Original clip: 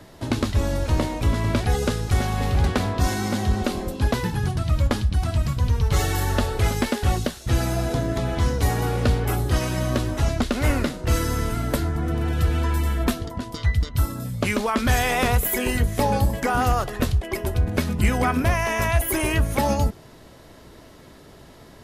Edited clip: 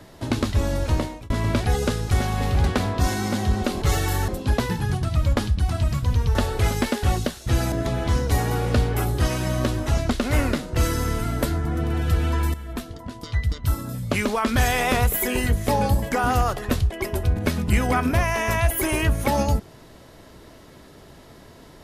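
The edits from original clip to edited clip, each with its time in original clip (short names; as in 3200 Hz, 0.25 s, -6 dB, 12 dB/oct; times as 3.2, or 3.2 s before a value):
0.92–1.3 fade out
5.89–6.35 move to 3.82
7.72–8.03 cut
12.85–14.61 fade in equal-power, from -14 dB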